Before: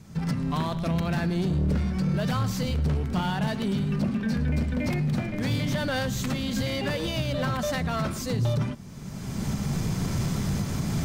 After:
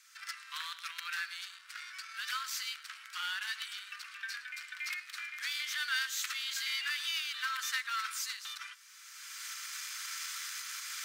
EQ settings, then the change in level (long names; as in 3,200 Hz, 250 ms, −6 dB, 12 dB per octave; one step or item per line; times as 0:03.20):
Butterworth high-pass 1,300 Hz 48 dB per octave
0.0 dB